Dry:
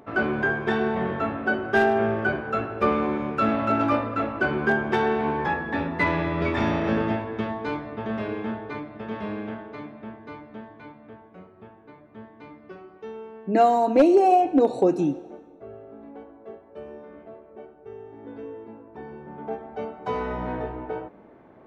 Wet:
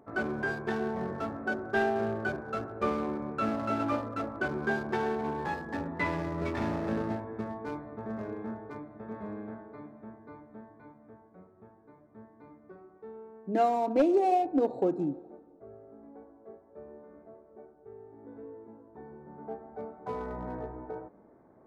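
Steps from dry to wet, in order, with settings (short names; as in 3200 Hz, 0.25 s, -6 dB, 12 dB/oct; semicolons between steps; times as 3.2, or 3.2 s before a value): Wiener smoothing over 15 samples; gain -7.5 dB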